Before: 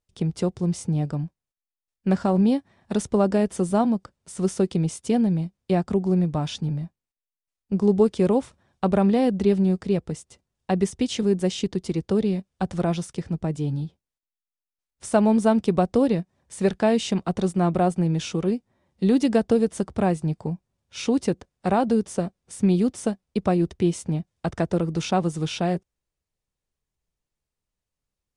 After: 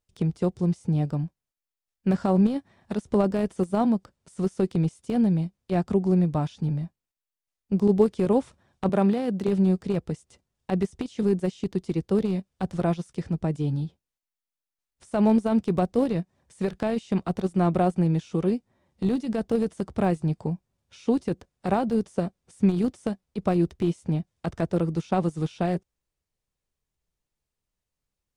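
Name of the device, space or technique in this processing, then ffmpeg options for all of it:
de-esser from a sidechain: -filter_complex "[0:a]asplit=2[s0][s1];[s1]highpass=f=4300:w=0.5412,highpass=f=4300:w=1.3066,apad=whole_len=1250760[s2];[s0][s2]sidechaincompress=threshold=0.00316:ratio=10:attack=0.51:release=24,asettb=1/sr,asplit=3[s3][s4][s5];[s3]atrim=end=8.894[s6];[s4]atrim=start=8.89:end=9.48,asetpts=PTS-STARTPTS,afade=t=in:d=0.004:c=qsin,afade=t=out:st=0.586:d=0.004:c=qsin,highpass=160[s7];[s5]atrim=start=9.476[s8];[s6][s7]acrossfade=d=0.004:c1=hsin:c2=qsin[s9];[s9][s8]acrossfade=d=0.004:c1=qsin:c2=hsin"

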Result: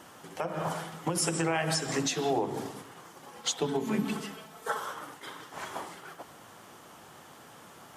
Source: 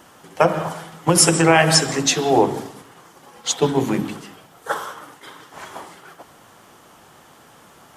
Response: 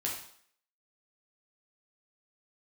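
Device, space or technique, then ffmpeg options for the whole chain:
podcast mastering chain: -filter_complex "[0:a]asettb=1/sr,asplit=3[s0][s1][s2];[s0]atrim=end=3.674[s3];[s1]atrim=start=3.67:end=4.8,asetpts=PTS-STARTPTS,afade=t=in:d=0.004:c=qsin,afade=t=out:st=1.126:d=0.004:c=qsin,aecho=1:1:4.6:0.77,atrim=end_sample=49833[s4];[s2]atrim=start=4.796[s5];[s3][s4]acrossfade=d=0.004:c1=hsin:c2=qsin[s6];[s6][s5]acrossfade=d=0.004:c1=qsin:c2=hsin,highpass=65,deesser=0.25,acompressor=threshold=0.0891:ratio=3,alimiter=limit=0.168:level=0:latency=1:release=323,volume=0.75" -ar 44100 -c:a libmp3lame -b:a 128k

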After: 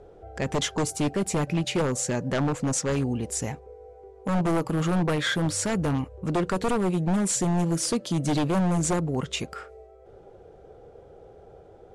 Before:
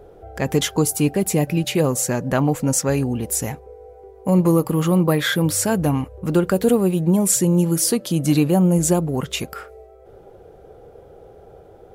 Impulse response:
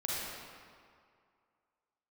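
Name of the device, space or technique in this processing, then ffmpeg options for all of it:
synthesiser wavefolder: -af "aeval=exprs='0.211*(abs(mod(val(0)/0.211+3,4)-2)-1)':c=same,lowpass=f=8600:w=0.5412,lowpass=f=8600:w=1.3066,volume=0.596"

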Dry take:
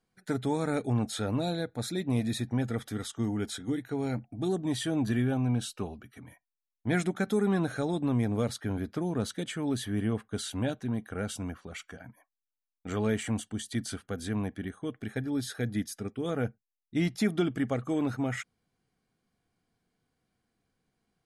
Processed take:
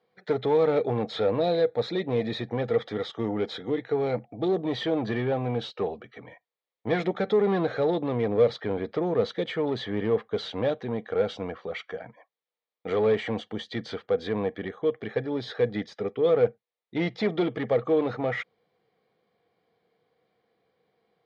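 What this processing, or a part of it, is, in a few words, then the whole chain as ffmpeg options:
overdrive pedal into a guitar cabinet: -filter_complex "[0:a]asplit=2[s0][s1];[s1]highpass=f=720:p=1,volume=8.91,asoftclip=type=tanh:threshold=0.158[s2];[s0][s2]amix=inputs=2:normalize=0,lowpass=f=3000:p=1,volume=0.501,highpass=91,equalizer=f=260:t=q:w=4:g=-8,equalizer=f=480:t=q:w=4:g=10,equalizer=f=1000:t=q:w=4:g=-3,equalizer=f=1500:t=q:w=4:g=-10,equalizer=f=2700:t=q:w=4:g=-8,lowpass=f=3900:w=0.5412,lowpass=f=3900:w=1.3066"

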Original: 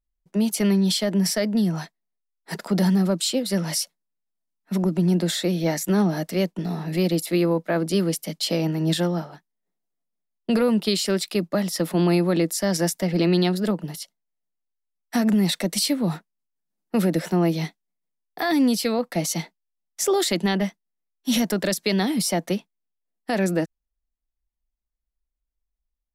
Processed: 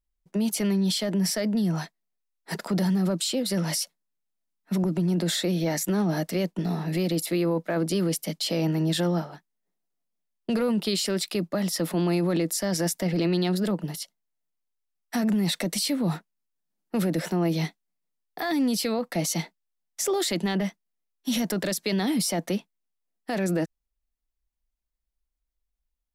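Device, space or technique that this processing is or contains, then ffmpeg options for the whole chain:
clipper into limiter: -af "asoftclip=type=hard:threshold=0.211,alimiter=limit=0.119:level=0:latency=1:release=16"

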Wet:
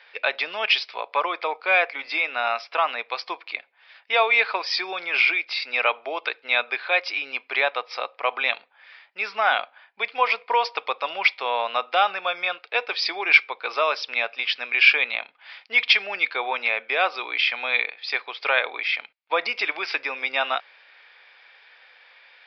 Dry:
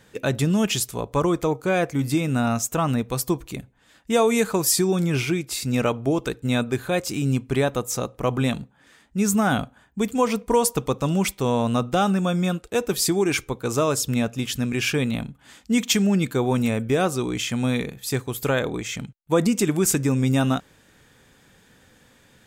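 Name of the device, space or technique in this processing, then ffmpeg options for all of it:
musical greeting card: -af "aresample=11025,aresample=44100,highpass=f=650:w=0.5412,highpass=f=650:w=1.3066,equalizer=f=2300:t=o:w=0.46:g=10.5,volume=1.5"

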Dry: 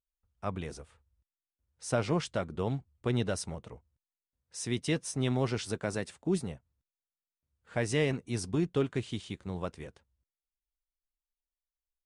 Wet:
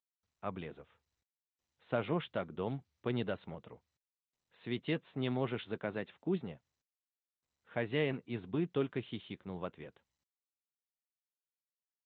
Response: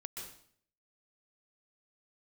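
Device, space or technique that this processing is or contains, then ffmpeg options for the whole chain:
Bluetooth headset: -af "highpass=140,aresample=8000,aresample=44100,volume=0.631" -ar 16000 -c:a sbc -b:a 64k

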